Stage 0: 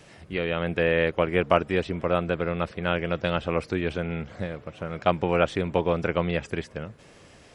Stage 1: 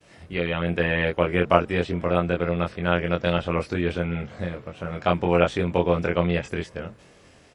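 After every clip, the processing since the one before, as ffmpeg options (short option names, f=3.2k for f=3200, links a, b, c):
-filter_complex "[0:a]agate=range=-33dB:threshold=-47dB:ratio=3:detection=peak,asplit=2[a][b];[b]adelay=23,volume=-3dB[c];[a][c]amix=inputs=2:normalize=0"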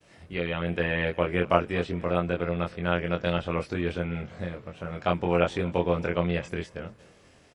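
-af "aecho=1:1:240:0.0794,volume=-4dB"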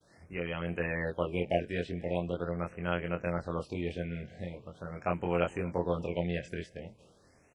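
-af "afftfilt=real='re*(1-between(b*sr/1024,1000*pow(4700/1000,0.5+0.5*sin(2*PI*0.42*pts/sr))/1.41,1000*pow(4700/1000,0.5+0.5*sin(2*PI*0.42*pts/sr))*1.41))':imag='im*(1-between(b*sr/1024,1000*pow(4700/1000,0.5+0.5*sin(2*PI*0.42*pts/sr))/1.41,1000*pow(4700/1000,0.5+0.5*sin(2*PI*0.42*pts/sr))*1.41))':win_size=1024:overlap=0.75,volume=-6dB"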